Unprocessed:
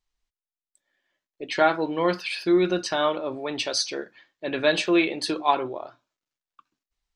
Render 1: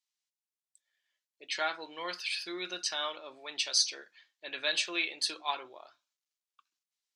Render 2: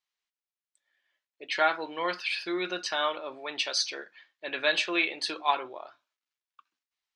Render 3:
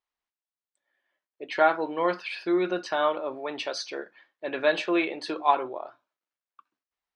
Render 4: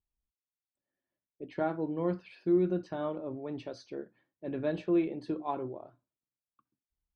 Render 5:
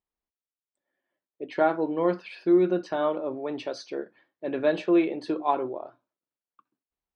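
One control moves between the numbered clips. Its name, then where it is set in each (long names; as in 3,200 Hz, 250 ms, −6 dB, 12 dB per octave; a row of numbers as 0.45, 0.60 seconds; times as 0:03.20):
resonant band-pass, frequency: 6,800, 2,500, 980, 100, 360 Hertz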